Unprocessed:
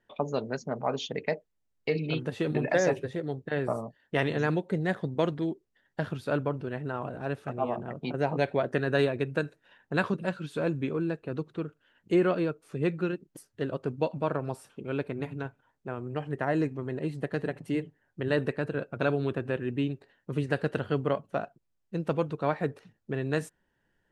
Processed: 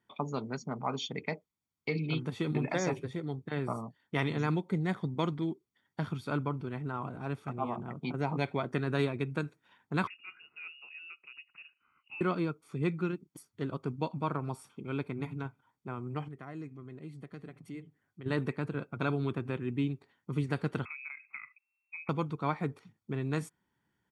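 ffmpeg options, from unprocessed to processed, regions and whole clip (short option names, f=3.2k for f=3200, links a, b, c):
-filter_complex "[0:a]asettb=1/sr,asplit=3[a][b][c];[a]atrim=end=10.074[d];[b]atrim=start=10.07:end=12.21,asetpts=PTS-STARTPTS,afade=t=in:d=0.004:c=qsin,afade=t=out:st=2.136:d=0.004:c=qsin,tremolo=f=3:d=0.3,acompressor=threshold=-50dB:ratio=2:attack=3.2:release=140:knee=1:detection=peak,lowpass=f=2.6k:t=q:w=0.5098,lowpass=f=2.6k:t=q:w=0.6013,lowpass=f=2.6k:t=q:w=0.9,lowpass=f=2.6k:t=q:w=2.563,afreqshift=-3000[e];[c]atrim=start=12.206[f];[d][e]acrossfade=d=0.004:c1=hsin:c2=qsin[g];[g][f]acrossfade=d=0.004:c1=qsin:c2=hsin,asettb=1/sr,asplit=3[h][i][j];[h]atrim=end=16.284[k];[i]atrim=start=16.28:end=18.26,asetpts=PTS-STARTPTS,afade=t=in:d=0.004:c=qsin,afade=t=out:st=1.976:d=0.004:c=qsin,bandreject=f=900:w=6.4,acompressor=threshold=-57dB:ratio=1.5:attack=3.2:release=140:knee=1:detection=peak[l];[j]atrim=start=18.256[m];[k][l]acrossfade=d=0.004:c1=hsin:c2=qsin[n];[n][m]acrossfade=d=0.004:c1=qsin:c2=hsin,asettb=1/sr,asplit=3[o][p][q];[o]atrim=end=20.854[r];[p]atrim=start=20.85:end=22.09,asetpts=PTS-STARTPTS,afade=t=in:d=0.004:c=qsin,afade=t=out:st=1.236:d=0.004:c=qsin,acompressor=threshold=-38dB:ratio=16:attack=3.2:release=140:knee=1:detection=peak,lowpass=f=2.3k:t=q:w=0.5098,lowpass=f=2.3k:t=q:w=0.6013,lowpass=f=2.3k:t=q:w=0.9,lowpass=f=2.3k:t=q:w=2.563,afreqshift=-2700[s];[q]atrim=start=22.086[t];[r][s]acrossfade=d=0.004:c1=hsin:c2=qsin[u];[u][t]acrossfade=d=0.004:c1=qsin:c2=hsin,highpass=93,aecho=1:1:0.9:0.59,volume=-3.5dB"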